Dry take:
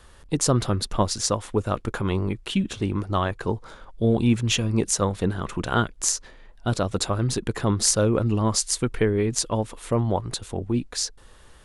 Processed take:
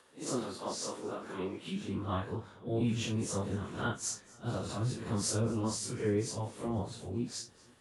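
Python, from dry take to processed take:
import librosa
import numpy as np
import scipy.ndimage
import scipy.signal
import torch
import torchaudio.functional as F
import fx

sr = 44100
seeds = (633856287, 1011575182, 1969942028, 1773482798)

p1 = fx.spec_blur(x, sr, span_ms=131.0)
p2 = p1 + fx.echo_feedback(p1, sr, ms=359, feedback_pct=51, wet_db=-22.5, dry=0)
p3 = fx.filter_sweep_highpass(p2, sr, from_hz=270.0, to_hz=110.0, start_s=2.34, end_s=3.26, q=0.98)
p4 = fx.stretch_vocoder_free(p3, sr, factor=0.67)
y = F.gain(torch.from_numpy(p4), -4.5).numpy()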